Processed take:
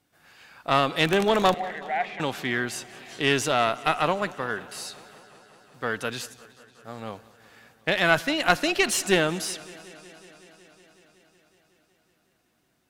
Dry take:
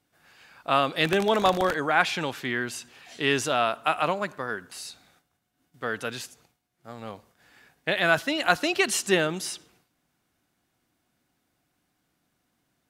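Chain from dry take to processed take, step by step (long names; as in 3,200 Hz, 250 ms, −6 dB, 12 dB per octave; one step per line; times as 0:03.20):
one-sided soft clipper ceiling −19.5 dBFS
0:01.54–0:02.20: pair of resonant band-passes 1,200 Hz, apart 1.4 octaves
feedback echo with a swinging delay time 185 ms, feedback 79%, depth 72 cents, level −21.5 dB
level +2.5 dB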